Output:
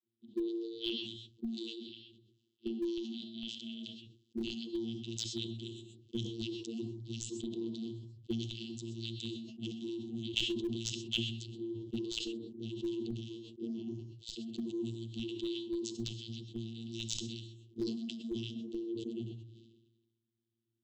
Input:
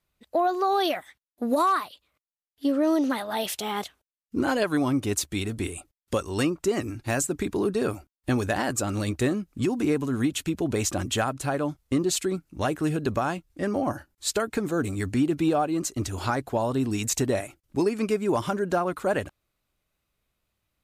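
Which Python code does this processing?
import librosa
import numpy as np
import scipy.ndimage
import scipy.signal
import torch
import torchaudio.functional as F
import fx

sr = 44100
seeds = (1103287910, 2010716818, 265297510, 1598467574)

p1 = fx.brickwall_bandstop(x, sr, low_hz=370.0, high_hz=3000.0)
p2 = fx.high_shelf_res(p1, sr, hz=1900.0, db=11.0, q=3.0)
p3 = fx.vocoder(p2, sr, bands=32, carrier='saw', carrier_hz=114.0)
p4 = fx.auto_wah(p3, sr, base_hz=410.0, top_hz=2000.0, q=2.2, full_db=-19.5, direction='up')
p5 = fx.rev_gated(p4, sr, seeds[0], gate_ms=150, shape='rising', drr_db=11.5)
p6 = fx.schmitt(p5, sr, flips_db=-36.5)
p7 = p5 + (p6 * 10.0 ** (-10.0 / 20.0))
p8 = fx.sustainer(p7, sr, db_per_s=48.0)
y = p8 * 10.0 ** (6.0 / 20.0)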